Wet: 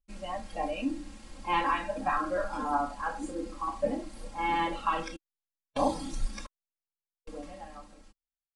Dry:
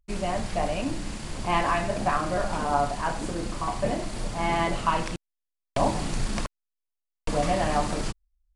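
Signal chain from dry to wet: fade out at the end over 2.61 s; spectral noise reduction 11 dB; comb 3.7 ms, depth 98%; trim -5.5 dB

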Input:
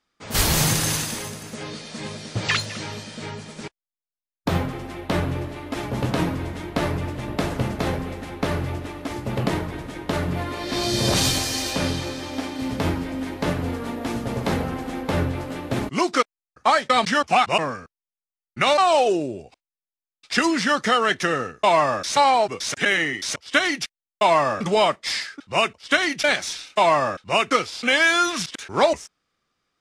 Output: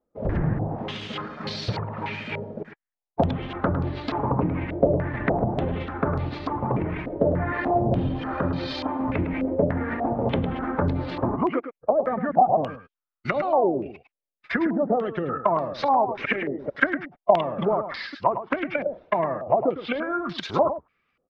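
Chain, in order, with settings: coarse spectral quantiser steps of 15 dB; low-pass that closes with the level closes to 490 Hz, closed at -19 dBFS; tempo 1.4×; on a send: delay 106 ms -10 dB; on the sum: step-sequenced low-pass 3.4 Hz 560–4300 Hz

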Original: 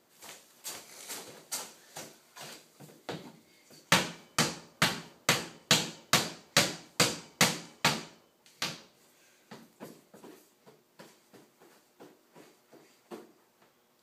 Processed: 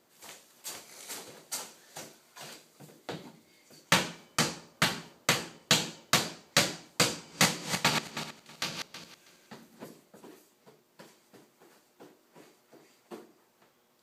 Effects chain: 7.11–9.84 s: backward echo that repeats 161 ms, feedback 42%, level -5 dB

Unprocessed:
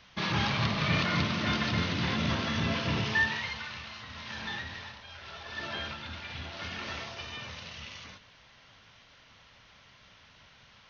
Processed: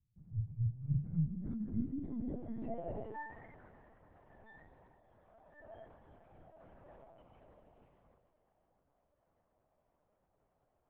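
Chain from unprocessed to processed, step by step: spectral noise reduction 12 dB; low-pass sweep 110 Hz -> 660 Hz, 0.75–2.95 s; Schroeder reverb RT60 3.4 s, combs from 31 ms, DRR 10.5 dB; LPC vocoder at 8 kHz pitch kept; trim -6 dB

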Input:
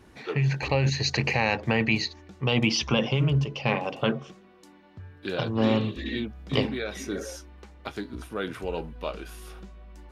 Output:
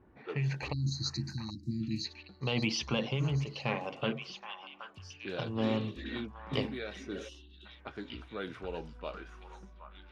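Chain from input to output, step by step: level-controlled noise filter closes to 1.2 kHz, open at -24.5 dBFS; spectral selection erased 0.72–2.05 s, 350–3800 Hz; repeats whose band climbs or falls 773 ms, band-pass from 1.2 kHz, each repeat 1.4 oct, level -5 dB; time-frequency box 7.29–7.66 s, 390–2600 Hz -23 dB; trim -8 dB

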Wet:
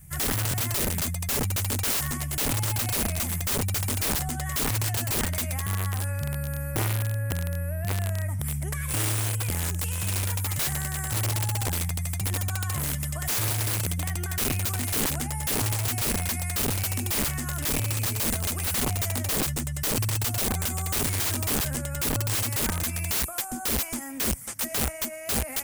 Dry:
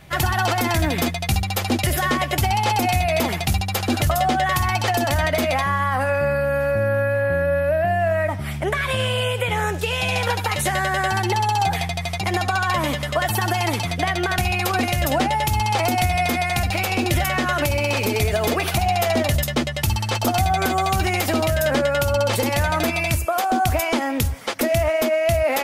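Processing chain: FFT filter 130 Hz 0 dB, 470 Hz -22 dB, 2 kHz -14 dB, 3.9 kHz -21 dB, 8.4 kHz +8 dB; integer overflow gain 21 dB; buffer glitch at 0.49 s, samples 1024, times 1

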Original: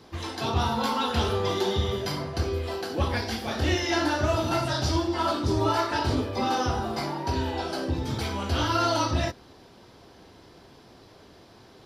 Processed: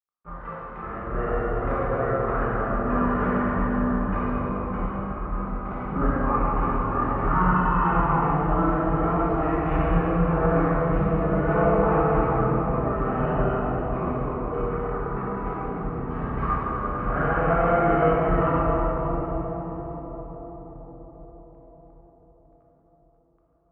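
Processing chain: crossover distortion -42.5 dBFS; resonant low-pass 2.4 kHz, resonance Q 8.5; random-step tremolo; plate-style reverb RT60 3.5 s, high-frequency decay 0.45×, DRR -6 dB; speed mistake 15 ips tape played at 7.5 ips; trim -2 dB

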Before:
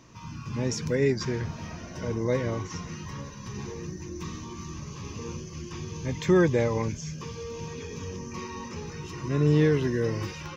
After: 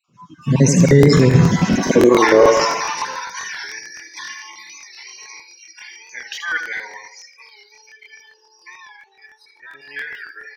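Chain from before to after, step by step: random holes in the spectrogram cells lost 34%; Doppler pass-by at 2.24 s, 25 m/s, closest 15 m; feedback delay 78 ms, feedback 51%, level -7 dB; spectral noise reduction 23 dB; high-pass sweep 150 Hz -> 1.7 kHz, 1.43–3.56 s; loudness maximiser +24 dB; crackling interface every 0.14 s, samples 1024, repeat, from 0.87 s; warped record 45 rpm, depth 100 cents; trim -1 dB

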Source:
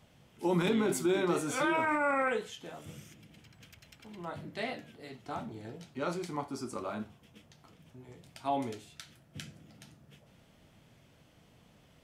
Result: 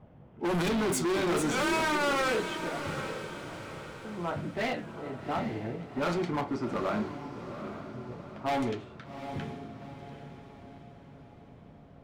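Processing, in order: level-controlled noise filter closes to 910 Hz, open at -25.5 dBFS; overload inside the chain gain 35 dB; echo that smears into a reverb 786 ms, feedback 46%, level -9 dB; trim +8.5 dB

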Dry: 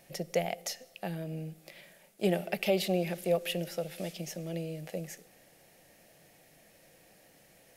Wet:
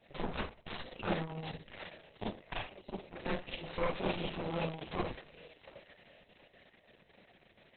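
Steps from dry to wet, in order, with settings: inverted gate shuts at -22 dBFS, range -27 dB; 2.23–2.64 s: high-pass 400 Hz -> 150 Hz 12 dB/octave; on a send: thinning echo 725 ms, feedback 39%, high-pass 1.1 kHz, level -6 dB; on the sum: Chebyshev shaper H 2 -45 dB, 4 -35 dB, 6 -7 dB, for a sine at -20 dBFS; 1.04–1.67 s: treble shelf 11 kHz +11 dB; Schroeder reverb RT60 0.37 s, combs from 29 ms, DRR -5 dB; trim -6 dB; Opus 6 kbps 48 kHz

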